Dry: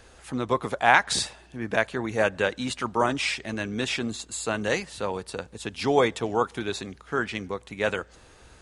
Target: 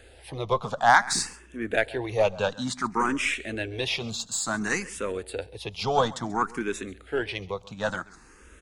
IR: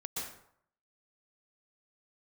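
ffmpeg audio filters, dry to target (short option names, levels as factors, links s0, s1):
-filter_complex "[0:a]asettb=1/sr,asplit=3[s0][s1][s2];[s0]atrim=end=4.074[s3];[s1]atrim=start=4.07:end=5.03,asetpts=PTS-STARTPTS,afade=t=in:d=0.004:c=qsin,afade=t=out:st=0.956:d=0.004:c=qsin,highshelf=f=3100:g=5[s4];[s2]atrim=start=5.026[s5];[s3][s4]acrossfade=d=0.004:c1=hsin:c2=qsin[s6];[s6][s5]acrossfade=d=0.004:c1=qsin:c2=hsin,aeval=exprs='0.794*(cos(1*acos(clip(val(0)/0.794,-1,1)))-cos(1*PI/2))+0.0501*(cos(6*acos(clip(val(0)/0.794,-1,1)))-cos(6*PI/2))':c=same,aecho=1:1:135:0.0944,asplit=2[s7][s8];[s8]afreqshift=0.57[s9];[s7][s9]amix=inputs=2:normalize=1,volume=1.33"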